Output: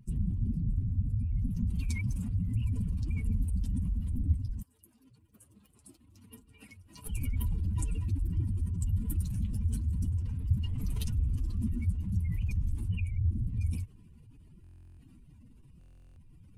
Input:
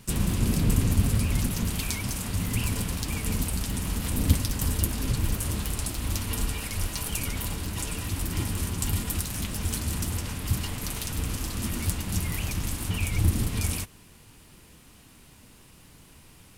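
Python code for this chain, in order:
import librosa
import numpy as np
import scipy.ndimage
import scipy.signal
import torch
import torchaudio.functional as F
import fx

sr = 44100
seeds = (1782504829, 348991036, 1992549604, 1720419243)

y = fx.spec_expand(x, sr, power=2.3)
y = fx.highpass(y, sr, hz=fx.line((4.61, 780.0), (7.05, 200.0)), slope=12, at=(4.61, 7.05), fade=0.02)
y = fx.rider(y, sr, range_db=10, speed_s=0.5)
y = fx.buffer_glitch(y, sr, at_s=(14.62, 15.79), block=1024, repeats=15)
y = y * 10.0 ** (-2.5 / 20.0)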